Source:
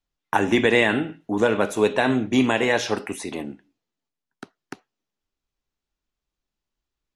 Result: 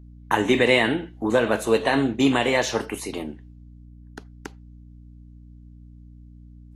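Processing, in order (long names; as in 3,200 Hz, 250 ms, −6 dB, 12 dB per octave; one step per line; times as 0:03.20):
speed change +6%
mains hum 60 Hz, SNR 20 dB
Ogg Vorbis 32 kbit/s 48,000 Hz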